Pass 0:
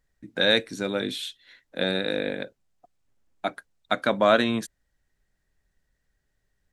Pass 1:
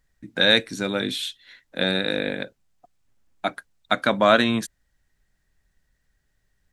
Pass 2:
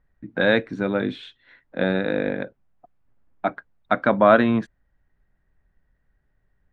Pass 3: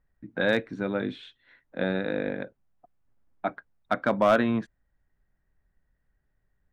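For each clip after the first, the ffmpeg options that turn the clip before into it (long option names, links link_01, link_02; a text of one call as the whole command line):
ffmpeg -i in.wav -af "equalizer=frequency=460:width=1:gain=-4,volume=4.5dB" out.wav
ffmpeg -i in.wav -af "lowpass=1500,volume=3dB" out.wav
ffmpeg -i in.wav -af "asoftclip=type=hard:threshold=-7dB,volume=-5.5dB" out.wav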